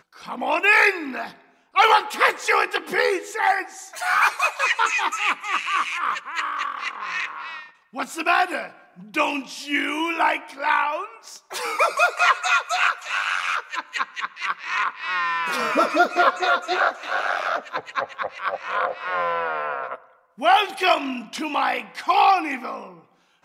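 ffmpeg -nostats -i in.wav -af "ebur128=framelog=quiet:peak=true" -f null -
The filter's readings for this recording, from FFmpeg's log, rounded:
Integrated loudness:
  I:         -21.8 LUFS
  Threshold: -32.3 LUFS
Loudness range:
  LRA:         5.3 LU
  Threshold: -42.5 LUFS
  LRA low:   -25.5 LUFS
  LRA high:  -20.2 LUFS
True peak:
  Peak:       -3.5 dBFS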